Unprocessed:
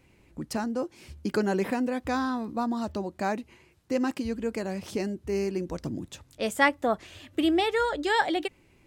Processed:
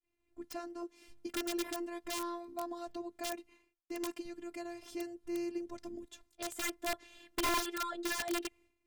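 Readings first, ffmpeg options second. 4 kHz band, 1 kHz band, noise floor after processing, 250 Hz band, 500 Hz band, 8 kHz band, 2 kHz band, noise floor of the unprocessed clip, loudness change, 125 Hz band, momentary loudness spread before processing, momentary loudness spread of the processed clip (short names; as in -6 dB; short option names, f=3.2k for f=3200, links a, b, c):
-6.0 dB, -11.0 dB, -82 dBFS, -12.0 dB, -12.5 dB, +1.5 dB, -11.5 dB, -61 dBFS, -10.5 dB, -23.5 dB, 12 LU, 12 LU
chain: -af "afftfilt=real='hypot(re,im)*cos(PI*b)':imag='0':win_size=512:overlap=0.75,aeval=exprs='(mod(11.2*val(0)+1,2)-1)/11.2':c=same,agate=range=-33dB:threshold=-53dB:ratio=3:detection=peak,volume=-6.5dB"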